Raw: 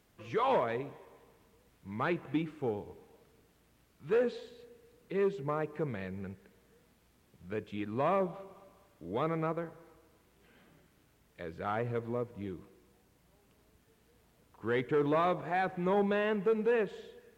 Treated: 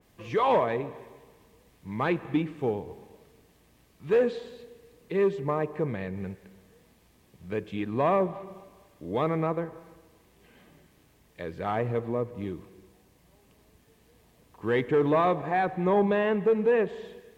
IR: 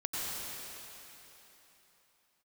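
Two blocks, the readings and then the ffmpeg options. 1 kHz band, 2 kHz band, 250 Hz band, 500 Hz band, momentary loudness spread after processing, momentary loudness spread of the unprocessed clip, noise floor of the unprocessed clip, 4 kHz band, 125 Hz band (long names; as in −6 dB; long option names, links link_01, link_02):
+5.5 dB, +4.0 dB, +6.0 dB, +6.0 dB, 17 LU, 17 LU, −68 dBFS, +4.0 dB, +6.0 dB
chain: -filter_complex "[0:a]bandreject=frequency=1400:width=6.5,asplit=2[link_01][link_02];[1:a]atrim=start_sample=2205,afade=type=out:start_time=0.42:duration=0.01,atrim=end_sample=18963[link_03];[link_02][link_03]afir=irnorm=-1:irlink=0,volume=-21.5dB[link_04];[link_01][link_04]amix=inputs=2:normalize=0,adynamicequalizer=threshold=0.00316:dfrequency=2400:dqfactor=0.7:tfrequency=2400:tqfactor=0.7:attack=5:release=100:ratio=0.375:range=3:mode=cutabove:tftype=highshelf,volume=5.5dB"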